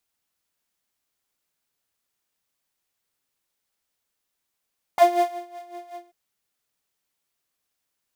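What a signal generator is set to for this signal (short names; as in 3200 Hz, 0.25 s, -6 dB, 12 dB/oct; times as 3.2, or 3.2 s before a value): synth patch with tremolo F5, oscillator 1 triangle, oscillator 2 saw, interval -12 st, detune 16 cents, oscillator 2 level -10 dB, noise -25 dB, filter highpass, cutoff 180 Hz, Q 1.9, filter envelope 3 oct, filter decay 0.06 s, attack 1.2 ms, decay 0.42 s, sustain -23 dB, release 0.15 s, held 0.99 s, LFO 5.4 Hz, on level 12.5 dB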